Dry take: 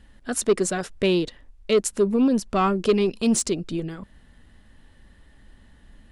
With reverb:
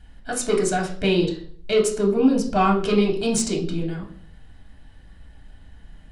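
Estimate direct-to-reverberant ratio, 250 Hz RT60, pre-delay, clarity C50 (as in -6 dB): -1.0 dB, 0.55 s, 3 ms, 9.0 dB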